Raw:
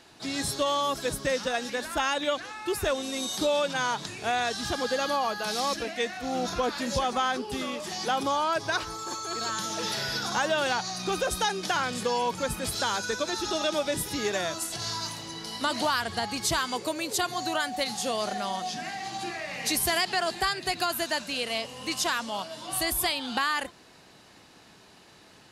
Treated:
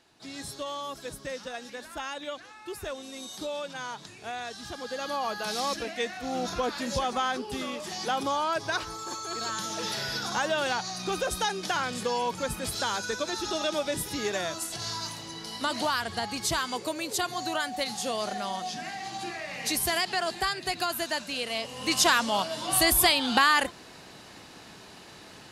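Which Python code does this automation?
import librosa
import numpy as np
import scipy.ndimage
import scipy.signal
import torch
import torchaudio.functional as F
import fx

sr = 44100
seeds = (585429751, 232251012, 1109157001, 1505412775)

y = fx.gain(x, sr, db=fx.line((4.8, -9.0), (5.34, -1.5), (21.55, -1.5), (22.0, 6.0)))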